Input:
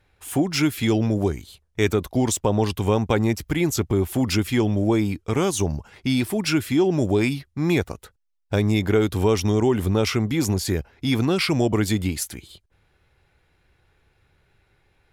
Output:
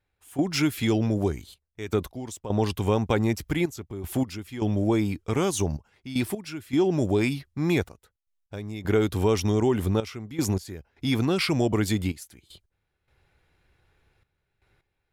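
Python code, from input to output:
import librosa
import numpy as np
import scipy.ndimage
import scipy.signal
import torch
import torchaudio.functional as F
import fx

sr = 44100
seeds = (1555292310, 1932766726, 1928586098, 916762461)

y = fx.step_gate(x, sr, bpm=78, pattern='..xxxxxx..x', floor_db=-12.0, edge_ms=4.5)
y = F.gain(torch.from_numpy(y), -3.0).numpy()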